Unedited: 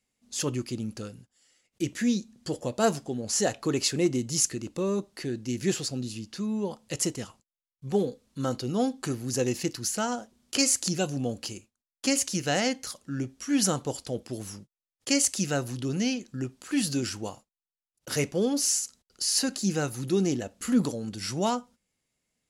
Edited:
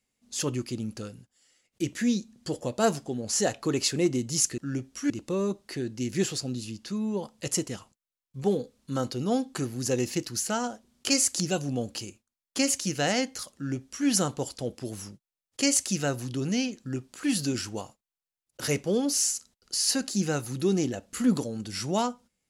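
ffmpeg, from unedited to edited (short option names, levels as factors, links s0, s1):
-filter_complex "[0:a]asplit=3[s0][s1][s2];[s0]atrim=end=4.582[s3];[s1]atrim=start=13.028:end=13.552[s4];[s2]atrim=start=4.578[s5];[s3][s4]acrossfade=d=0.004:c1=hsin:c2=hsin[s6];[s6][s5]acrossfade=d=0.004:c1=hsin:c2=hsin"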